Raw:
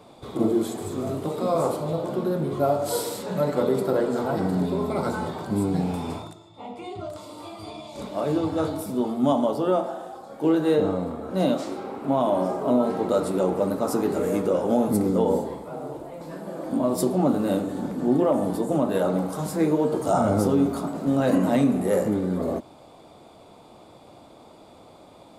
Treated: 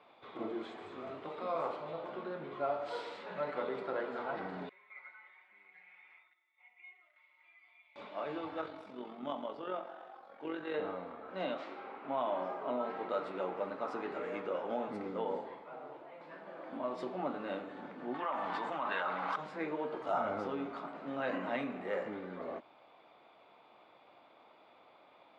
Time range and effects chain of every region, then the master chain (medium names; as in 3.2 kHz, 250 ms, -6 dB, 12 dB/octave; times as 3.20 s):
4.69–7.96 s: band-pass filter 2.1 kHz, Q 12 + comb 5.5 ms, depth 97%
8.61–10.74 s: dynamic bell 810 Hz, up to -4 dB, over -33 dBFS, Q 1.3 + AM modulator 45 Hz, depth 35%
18.14–19.36 s: low-pass 8 kHz + resonant low shelf 710 Hz -9.5 dB, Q 1.5 + level flattener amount 100%
whole clip: low-pass 2.4 kHz 24 dB/octave; differentiator; trim +8.5 dB